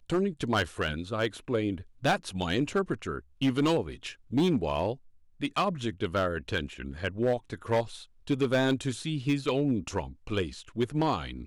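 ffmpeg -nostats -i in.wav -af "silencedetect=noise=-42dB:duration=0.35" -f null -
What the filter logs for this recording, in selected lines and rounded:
silence_start: 4.95
silence_end: 5.41 | silence_duration: 0.45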